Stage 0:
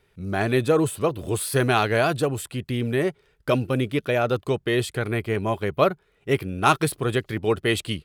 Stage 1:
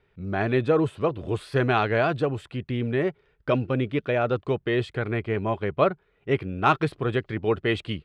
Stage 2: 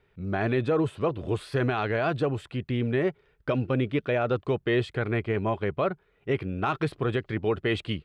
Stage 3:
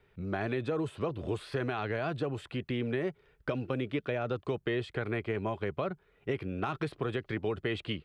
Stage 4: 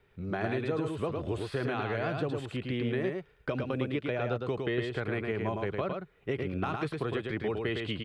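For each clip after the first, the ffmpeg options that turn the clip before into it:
-af "lowpass=2.9k,volume=-1.5dB"
-af "alimiter=limit=-16.5dB:level=0:latency=1:release=54"
-filter_complex "[0:a]acrossover=split=260|4400[a][b][c];[a]acompressor=threshold=-38dB:ratio=4[d];[b]acompressor=threshold=-32dB:ratio=4[e];[c]acompressor=threshold=-57dB:ratio=4[f];[d][e][f]amix=inputs=3:normalize=0"
-af "aecho=1:1:109:0.631"

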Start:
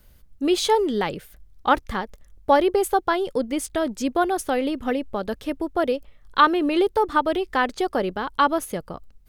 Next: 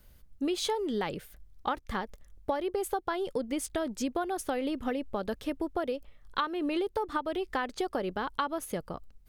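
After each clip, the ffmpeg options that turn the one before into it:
-af "acompressor=threshold=-23dB:ratio=12,volume=-4dB"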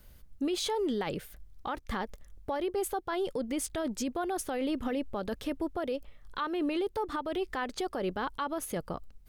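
-af "alimiter=level_in=3dB:limit=-24dB:level=0:latency=1:release=11,volume=-3dB,volume=2.5dB"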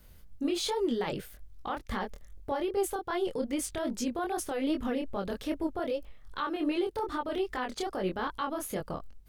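-af "flanger=delay=20:depth=6.8:speed=2.5,volume=3.5dB"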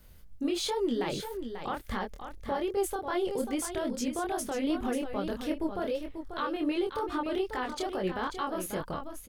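-af "aecho=1:1:540:0.376"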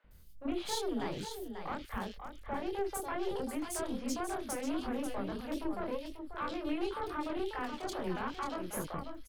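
-filter_complex "[0:a]aeval=exprs='(tanh(25.1*val(0)+0.65)-tanh(0.65))/25.1':c=same,acrossover=split=490|2800[a][b][c];[a]adelay=40[d];[c]adelay=110[e];[d][b][e]amix=inputs=3:normalize=0"

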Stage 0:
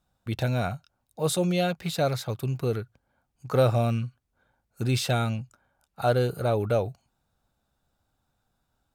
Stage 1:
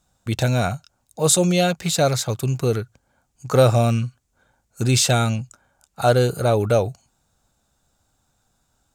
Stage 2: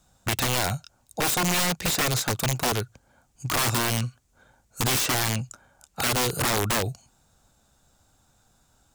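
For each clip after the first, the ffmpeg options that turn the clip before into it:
-af "equalizer=f=7.1k:t=o:w=0.81:g=11.5,volume=6.5dB"
-filter_complex "[0:a]acrossover=split=380|2600[a][b][c];[a]acompressor=threshold=-29dB:ratio=4[d];[b]acompressor=threshold=-30dB:ratio=4[e];[c]acompressor=threshold=-30dB:ratio=4[f];[d][e][f]amix=inputs=3:normalize=0,aeval=exprs='(mod(12.6*val(0)+1,2)-1)/12.6':c=same,volume=4dB"

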